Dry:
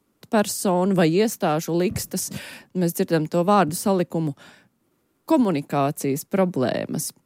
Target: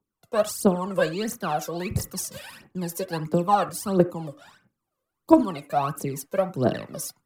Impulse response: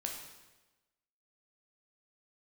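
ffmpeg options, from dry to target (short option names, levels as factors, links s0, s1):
-filter_complex "[0:a]agate=range=0.355:threshold=0.00355:ratio=16:detection=peak,dynaudnorm=f=100:g=5:m=1.78,aphaser=in_gain=1:out_gain=1:delay=2:decay=0.8:speed=1.5:type=triangular,asplit=2[s0][s1];[s1]highpass=f=270:w=0.5412,highpass=f=270:w=1.3066,equalizer=f=290:t=q:w=4:g=5,equalizer=f=630:t=q:w=4:g=-4,equalizer=f=1200:t=q:w=4:g=8,lowpass=f=2200:w=0.5412,lowpass=f=2200:w=1.3066[s2];[1:a]atrim=start_sample=2205,atrim=end_sample=4410[s3];[s2][s3]afir=irnorm=-1:irlink=0,volume=0.473[s4];[s0][s4]amix=inputs=2:normalize=0,volume=0.224"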